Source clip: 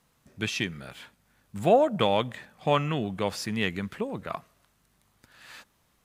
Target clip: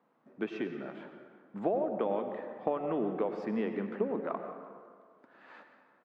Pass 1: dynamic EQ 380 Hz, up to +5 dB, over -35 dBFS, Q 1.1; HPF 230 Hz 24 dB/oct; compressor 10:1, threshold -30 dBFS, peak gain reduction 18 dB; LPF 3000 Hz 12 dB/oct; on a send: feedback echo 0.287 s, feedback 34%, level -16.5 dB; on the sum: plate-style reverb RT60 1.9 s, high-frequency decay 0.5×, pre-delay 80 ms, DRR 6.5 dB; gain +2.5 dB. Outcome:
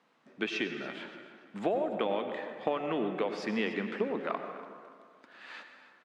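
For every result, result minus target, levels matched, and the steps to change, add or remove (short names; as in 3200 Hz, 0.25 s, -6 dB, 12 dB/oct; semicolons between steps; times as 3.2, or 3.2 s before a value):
4000 Hz band +14.5 dB; echo 0.108 s late
change: LPF 1100 Hz 12 dB/oct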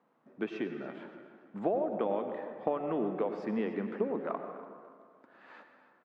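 echo 0.108 s late
change: feedback echo 0.179 s, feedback 34%, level -16.5 dB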